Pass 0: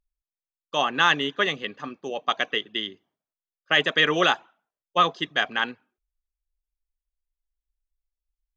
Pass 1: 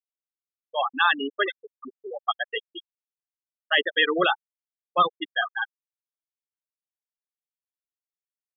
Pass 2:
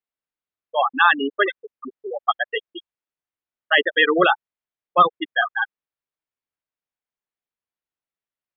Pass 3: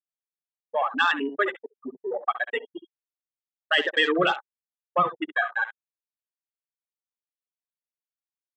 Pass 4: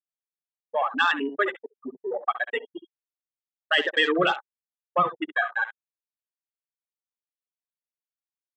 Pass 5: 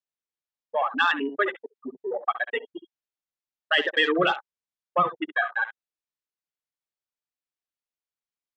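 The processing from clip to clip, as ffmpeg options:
-af "agate=range=-33dB:threshold=-46dB:ratio=3:detection=peak,aecho=1:1:429|450:0.2|0.112,afftfilt=real='re*gte(hypot(re,im),0.224)':imag='im*gte(hypot(re,im),0.224)':win_size=1024:overlap=0.75"
-af "lowpass=2.7k,volume=6dB"
-filter_complex "[0:a]acrossover=split=230|3000[a][b][c];[b]acompressor=threshold=-26dB:ratio=2[d];[a][d][c]amix=inputs=3:normalize=0,asplit=2[e][f];[f]aecho=0:1:13|67:0.2|0.237[g];[e][g]amix=inputs=2:normalize=0,afwtdn=0.0224"
-af anull
-af "lowpass=6.2k"

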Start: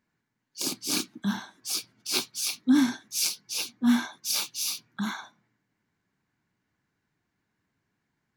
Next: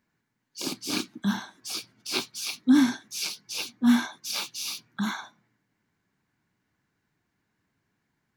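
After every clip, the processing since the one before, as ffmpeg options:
-filter_complex "[0:a]acrossover=split=4300[a][b];[b]acompressor=threshold=-37dB:ratio=4:attack=1:release=60[c];[a][c]amix=inputs=2:normalize=0,volume=2dB"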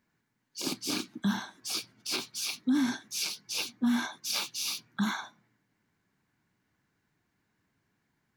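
-af "alimiter=limit=-20dB:level=0:latency=1:release=113"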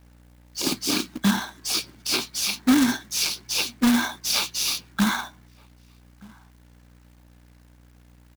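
-filter_complex "[0:a]aeval=exprs='val(0)+0.001*(sin(2*PI*60*n/s)+sin(2*PI*2*60*n/s)/2+sin(2*PI*3*60*n/s)/3+sin(2*PI*4*60*n/s)/4+sin(2*PI*5*60*n/s)/5)':c=same,asplit=2[a][b];[b]adelay=1224,volume=-25dB,highshelf=f=4k:g=-27.6[c];[a][c]amix=inputs=2:normalize=0,acrusher=bits=2:mode=log:mix=0:aa=0.000001,volume=8dB"

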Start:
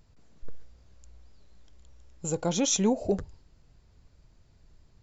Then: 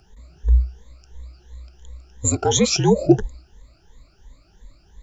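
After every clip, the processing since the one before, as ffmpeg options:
-af "afftfilt=real='re*pow(10,20/40*sin(2*PI*(1.1*log(max(b,1)*sr/1024/100)/log(2)-(2.9)*(pts-256)/sr)))':imag='im*pow(10,20/40*sin(2*PI*(1.1*log(max(b,1)*sr/1024/100)/log(2)-(2.9)*(pts-256)/sr)))':win_size=1024:overlap=0.75,afreqshift=-62,volume=6.5dB"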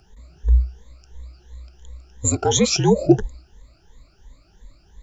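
-af anull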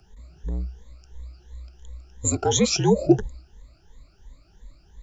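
-filter_complex "[0:a]lowshelf=f=180:g=3,acrossover=split=160|1300[a][b][c];[a]asoftclip=type=tanh:threshold=-23dB[d];[d][b][c]amix=inputs=3:normalize=0,volume=-3dB"

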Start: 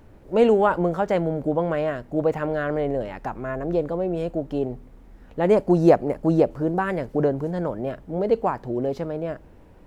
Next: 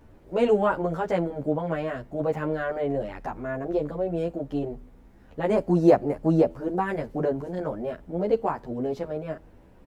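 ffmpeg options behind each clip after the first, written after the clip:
-filter_complex "[0:a]asplit=2[a][b];[b]adelay=10.9,afreqshift=1.3[c];[a][c]amix=inputs=2:normalize=1"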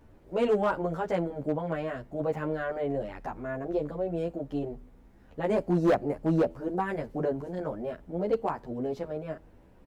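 -af "volume=15dB,asoftclip=hard,volume=-15dB,volume=-3.5dB"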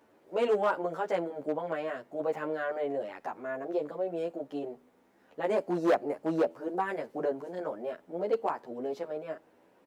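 -af "highpass=350"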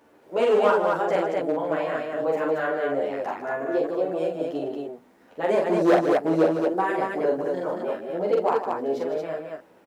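-af "aecho=1:1:43.73|154.5|227.4:0.708|0.355|0.708,volume=5dB"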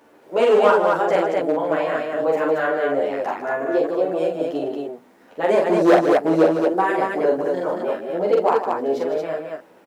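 -af "lowshelf=f=95:g=-10.5,volume=5dB"

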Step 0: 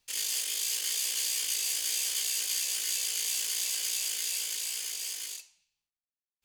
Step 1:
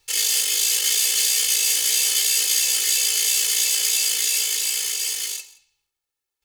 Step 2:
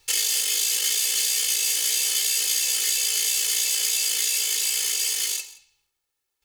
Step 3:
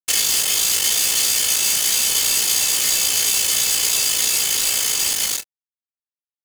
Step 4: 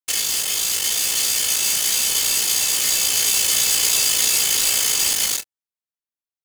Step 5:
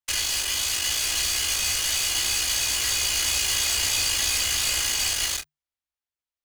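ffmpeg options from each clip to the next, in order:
-af "aecho=1:1:2.3:0.82,aecho=1:1:173:0.0841,volume=9dB"
-af "acompressor=threshold=-25dB:ratio=4,volume=4dB"
-filter_complex "[0:a]acrusher=bits=3:mix=0:aa=0.5,asplit=2[a][b];[b]adelay=28,volume=-12dB[c];[a][c]amix=inputs=2:normalize=0,volume=4.5dB"
-af "dynaudnorm=f=430:g=5:m=11.5dB,volume=-3.5dB"
-filter_complex "[0:a]asplit=2[a][b];[b]highpass=f=720:p=1,volume=14dB,asoftclip=type=tanh:threshold=-4dB[c];[a][c]amix=inputs=2:normalize=0,lowpass=f=4.2k:p=1,volume=-6dB,afreqshift=-150,lowshelf=f=110:t=q:w=1.5:g=12,volume=-6.5dB"

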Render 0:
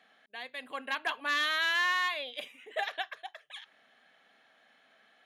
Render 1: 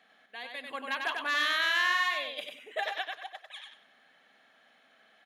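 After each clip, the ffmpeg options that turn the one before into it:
-af "aecho=1:1:95|190|285:0.596|0.149|0.0372"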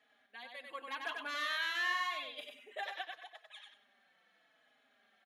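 -filter_complex "[0:a]asplit=2[a][b];[b]adelay=4.3,afreqshift=-0.85[c];[a][c]amix=inputs=2:normalize=1,volume=-5dB"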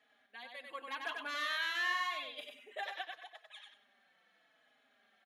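-af anull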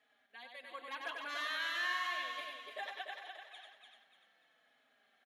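-filter_complex "[0:a]equalizer=f=200:w=4.6:g=-4.5,asplit=2[a][b];[b]aecho=0:1:294|588|882|1176:0.531|0.181|0.0614|0.0209[c];[a][c]amix=inputs=2:normalize=0,volume=-2.5dB"

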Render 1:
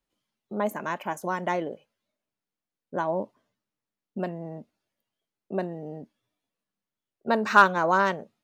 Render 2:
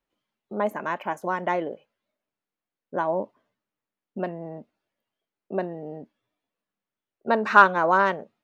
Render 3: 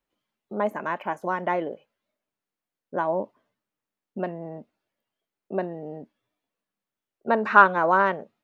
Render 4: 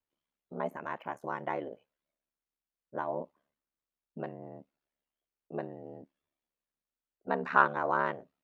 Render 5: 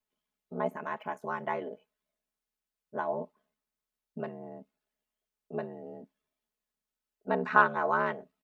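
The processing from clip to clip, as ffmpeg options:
-af "bass=f=250:g=-5,treble=f=4k:g=-11,volume=2.5dB"
-filter_complex "[0:a]acrossover=split=3200[a][b];[b]acompressor=threshold=-54dB:ratio=4:attack=1:release=60[c];[a][c]amix=inputs=2:normalize=0"
-af "aeval=exprs='val(0)*sin(2*PI*36*n/s)':c=same,volume=-6.5dB"
-af "aecho=1:1:4.7:0.75"

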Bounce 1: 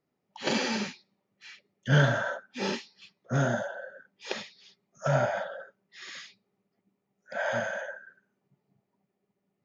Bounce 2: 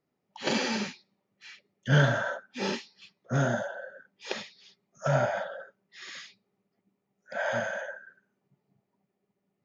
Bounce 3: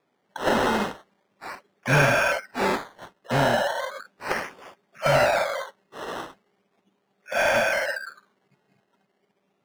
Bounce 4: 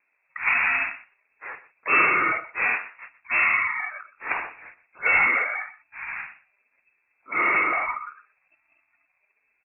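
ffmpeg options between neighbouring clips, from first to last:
-af anull
-filter_complex "[0:a]acrusher=samples=15:mix=1:aa=0.000001:lfo=1:lforange=9:lforate=0.37,asplit=2[a][b];[b]highpass=f=720:p=1,volume=19dB,asoftclip=type=tanh:threshold=-11dB[c];[a][c]amix=inputs=2:normalize=0,lowpass=f=2.4k:p=1,volume=-6dB,volume=1.5dB"
-filter_complex "[0:a]asplit=2[a][b];[b]adelay=122.4,volume=-17dB,highshelf=f=4k:g=-2.76[c];[a][c]amix=inputs=2:normalize=0,lowpass=f=2.4k:t=q:w=0.5098,lowpass=f=2.4k:t=q:w=0.6013,lowpass=f=2.4k:t=q:w=0.9,lowpass=f=2.4k:t=q:w=2.563,afreqshift=-2800"

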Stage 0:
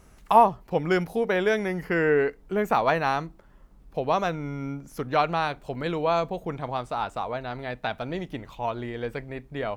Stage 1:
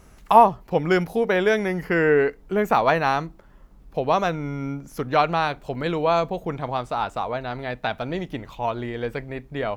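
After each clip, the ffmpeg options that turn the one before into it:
-af "equalizer=f=8.8k:w=6.7:g=-4.5,volume=3.5dB"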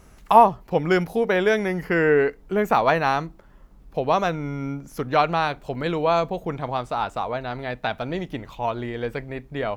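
-af anull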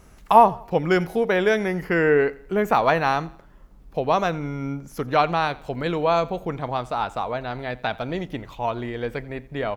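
-af "aecho=1:1:87|174|261:0.0841|0.0337|0.0135"

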